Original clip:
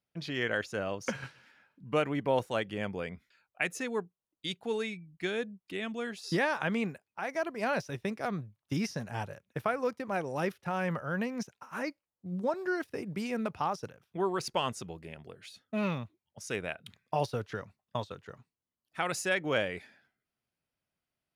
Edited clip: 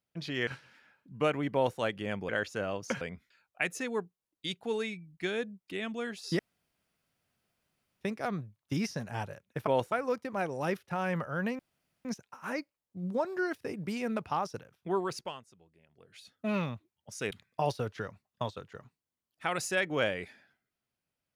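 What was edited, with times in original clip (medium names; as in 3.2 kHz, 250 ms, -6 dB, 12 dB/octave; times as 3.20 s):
0.47–1.19 s: move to 3.01 s
2.26–2.51 s: copy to 9.67 s
6.39–8.01 s: room tone
11.34 s: insert room tone 0.46 s
14.28–15.64 s: dip -20 dB, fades 0.42 s
16.60–16.85 s: delete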